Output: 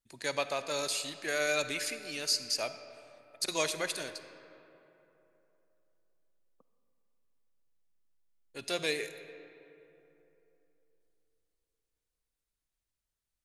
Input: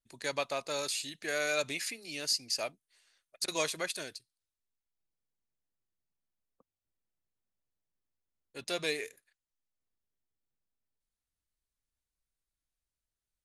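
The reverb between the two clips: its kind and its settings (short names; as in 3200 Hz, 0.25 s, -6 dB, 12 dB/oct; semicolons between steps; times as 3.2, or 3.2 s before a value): digital reverb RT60 3.2 s, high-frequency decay 0.5×, pre-delay 10 ms, DRR 10.5 dB; gain +1 dB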